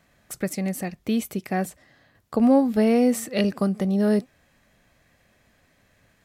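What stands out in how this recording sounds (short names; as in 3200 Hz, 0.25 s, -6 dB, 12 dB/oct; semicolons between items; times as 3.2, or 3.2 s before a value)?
noise floor -64 dBFS; spectral tilt -6.0 dB/oct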